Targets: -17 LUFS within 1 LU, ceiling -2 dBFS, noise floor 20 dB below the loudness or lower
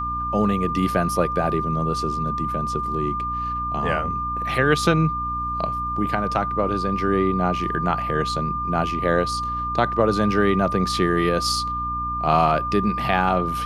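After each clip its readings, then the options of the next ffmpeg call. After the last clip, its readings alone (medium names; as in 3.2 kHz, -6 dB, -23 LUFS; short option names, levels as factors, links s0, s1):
hum 60 Hz; highest harmonic 300 Hz; hum level -30 dBFS; steady tone 1.2 kHz; tone level -24 dBFS; loudness -22.0 LUFS; peak level -5.0 dBFS; loudness target -17.0 LUFS
-> -af "bandreject=f=60:t=h:w=4,bandreject=f=120:t=h:w=4,bandreject=f=180:t=h:w=4,bandreject=f=240:t=h:w=4,bandreject=f=300:t=h:w=4"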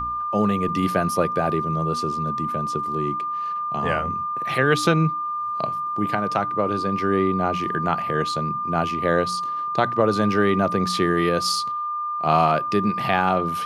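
hum not found; steady tone 1.2 kHz; tone level -24 dBFS
-> -af "bandreject=f=1200:w=30"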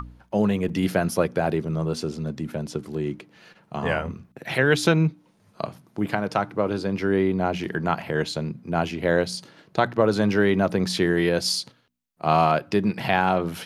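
steady tone not found; loudness -24.0 LUFS; peak level -5.5 dBFS; loudness target -17.0 LUFS
-> -af "volume=2.24,alimiter=limit=0.794:level=0:latency=1"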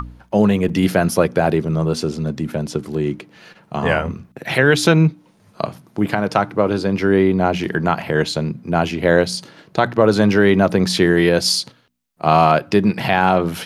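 loudness -17.5 LUFS; peak level -2.0 dBFS; noise floor -54 dBFS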